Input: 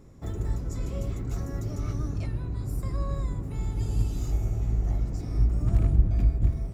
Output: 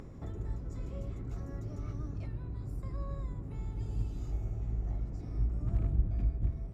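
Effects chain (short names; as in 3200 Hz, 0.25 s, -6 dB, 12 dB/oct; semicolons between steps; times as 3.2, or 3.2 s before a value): upward compressor, threshold -27 dBFS; LPF 2600 Hz 6 dB/oct; gain -8.5 dB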